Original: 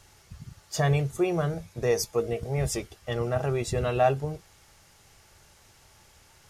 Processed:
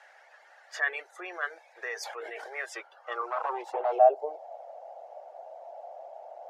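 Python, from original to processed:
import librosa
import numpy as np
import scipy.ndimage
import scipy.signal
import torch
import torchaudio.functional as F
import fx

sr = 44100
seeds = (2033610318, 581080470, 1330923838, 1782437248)

p1 = fx.lower_of_two(x, sr, delay_ms=8.3, at=(3.21, 3.99))
p2 = scipy.signal.sosfilt(scipy.signal.butter(8, 350.0, 'highpass', fs=sr, output='sos'), p1)
p3 = fx.over_compress(p2, sr, threshold_db=-31.0, ratio=-1.0)
p4 = p2 + (p3 * 10.0 ** (0.5 / 20.0))
p5 = fx.dereverb_blind(p4, sr, rt60_s=0.56)
p6 = fx.dmg_noise_band(p5, sr, seeds[0], low_hz=510.0, high_hz=870.0, level_db=-47.0)
p7 = fx.filter_sweep_bandpass(p6, sr, from_hz=1700.0, to_hz=670.0, start_s=2.62, end_s=4.1, q=5.1)
p8 = fx.sustainer(p7, sr, db_per_s=33.0, at=(2.0, 2.54), fade=0.02)
y = p8 * 10.0 ** (5.5 / 20.0)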